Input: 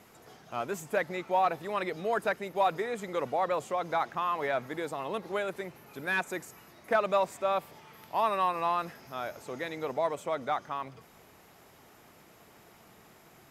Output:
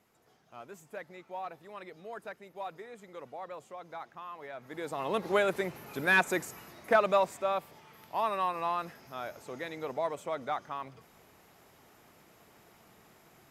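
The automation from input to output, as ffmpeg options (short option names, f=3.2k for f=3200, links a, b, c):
-af "volume=5.5dB,afade=t=in:st=4.58:d=0.28:silence=0.281838,afade=t=in:st=4.86:d=0.45:silence=0.398107,afade=t=out:st=6.3:d=1.3:silence=0.375837"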